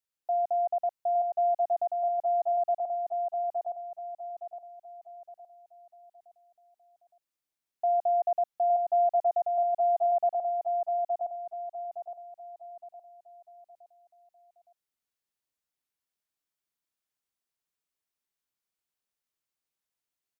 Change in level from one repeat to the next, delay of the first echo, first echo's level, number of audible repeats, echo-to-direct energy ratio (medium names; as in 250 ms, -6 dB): -8.0 dB, 865 ms, -3.5 dB, 4, -3.0 dB